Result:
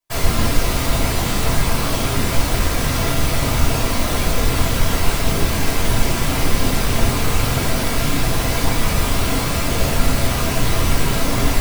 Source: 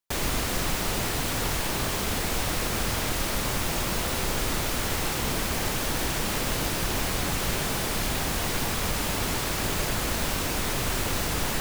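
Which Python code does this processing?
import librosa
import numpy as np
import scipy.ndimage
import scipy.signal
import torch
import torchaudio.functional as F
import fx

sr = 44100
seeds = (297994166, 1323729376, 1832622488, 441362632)

y = fx.whisperise(x, sr, seeds[0])
y = fx.room_shoebox(y, sr, seeds[1], volume_m3=300.0, walls='furnished', distance_m=5.5)
y = y * librosa.db_to_amplitude(-2.5)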